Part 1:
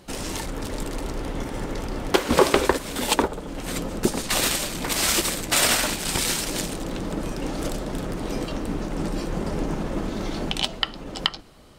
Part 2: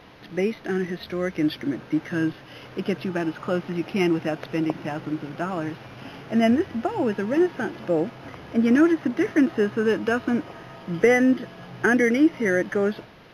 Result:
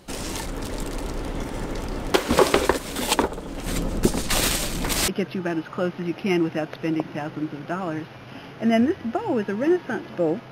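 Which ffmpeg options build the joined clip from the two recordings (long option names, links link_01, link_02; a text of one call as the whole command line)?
ffmpeg -i cue0.wav -i cue1.wav -filter_complex "[0:a]asettb=1/sr,asplit=3[link_01][link_02][link_03];[link_01]atrim=end=3.664[link_04];[link_02]atrim=start=3.66:end=5.08,asetpts=PTS-STARTPTS,afade=type=in:duration=0.004:curve=qsin,afade=type=out:start_time=1.416:duration=0.004:curve=qsin,lowshelf=frequency=160:gain=7.5[link_05];[link_03]atrim=start=5.076[link_06];[link_04][link_05]acrossfade=duration=0.004:curve1=hsin:curve2=qsin[link_07];[link_07][link_06]acrossfade=duration=0.004:curve1=qsin:curve2=hsin,apad=whole_dur=10.51,atrim=end=10.51,atrim=end=5.082[link_08];[1:a]atrim=start=2.778:end=8.21[link_09];[link_08][link_09]acrossfade=duration=0.004:curve1=hsin:curve2=hsin" out.wav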